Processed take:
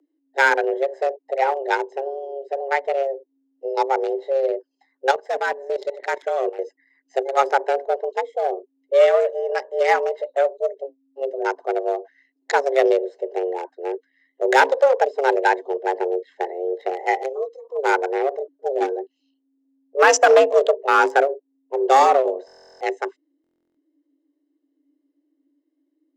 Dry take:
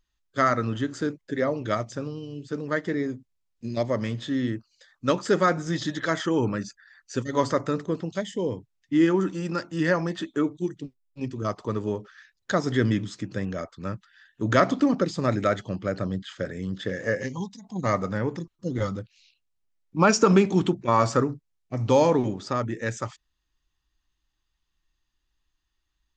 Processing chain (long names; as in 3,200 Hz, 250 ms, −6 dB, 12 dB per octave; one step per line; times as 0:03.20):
adaptive Wiener filter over 41 samples
hard clipping −14 dBFS, distortion −17 dB
frequency shifter +270 Hz
0:05.11–0:06.59: output level in coarse steps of 14 dB
buffer that repeats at 0:22.46/0:23.42, samples 1,024, times 14
level +6.5 dB